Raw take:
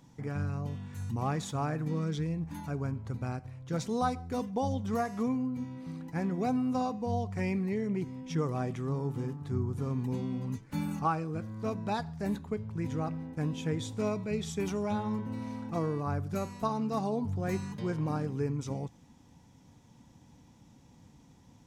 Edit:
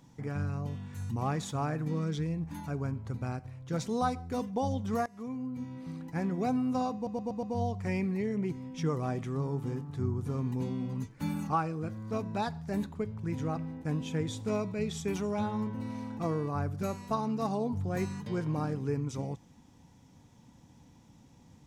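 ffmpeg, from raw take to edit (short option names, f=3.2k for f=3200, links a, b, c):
-filter_complex "[0:a]asplit=6[a][b][c][d][e][f];[a]atrim=end=5.06,asetpts=PTS-STARTPTS,afade=t=out:st=5.056:d=0.004:c=hsin:silence=0.112202[g];[b]atrim=start=5.06:end=7.072,asetpts=PTS-STARTPTS,afade=t=in:d=0.7:silence=0.112202[h];[c]atrim=start=6.948:end=7.072[i];[d]atrim=start=6.948:end=7.072[j];[e]atrim=start=6.948:end=7.072[k];[f]atrim=start=6.948[l];[g][h]concat=n=2:v=0:a=1[m];[m][i]acrossfade=d=0.004:c1=hsin:c2=hsin[n];[n][j]acrossfade=d=0.004:c1=hsin:c2=hsin[o];[o][k]acrossfade=d=0.004:c1=hsin:c2=hsin[p];[p][l]acrossfade=d=0.004:c1=hsin:c2=hsin"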